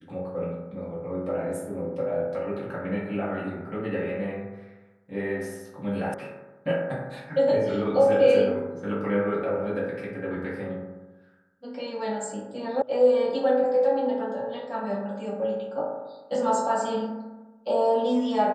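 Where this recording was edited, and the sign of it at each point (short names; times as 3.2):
6.14 sound cut off
12.82 sound cut off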